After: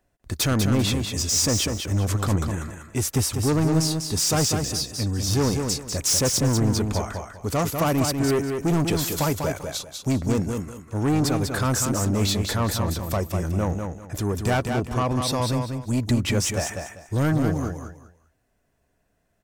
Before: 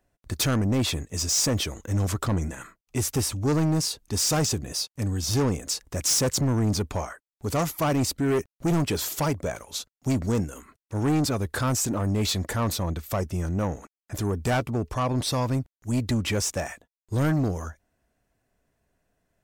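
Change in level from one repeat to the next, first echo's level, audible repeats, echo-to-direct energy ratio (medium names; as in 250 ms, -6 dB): -12.0 dB, -5.5 dB, 3, -5.0 dB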